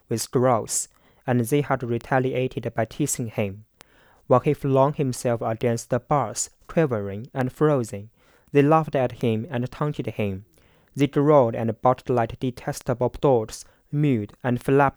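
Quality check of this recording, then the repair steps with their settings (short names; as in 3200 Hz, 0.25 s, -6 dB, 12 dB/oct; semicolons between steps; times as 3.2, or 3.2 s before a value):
tick 33 1/3 rpm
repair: de-click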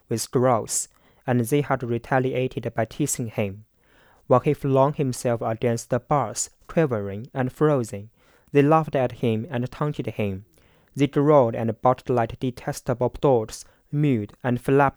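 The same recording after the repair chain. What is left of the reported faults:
none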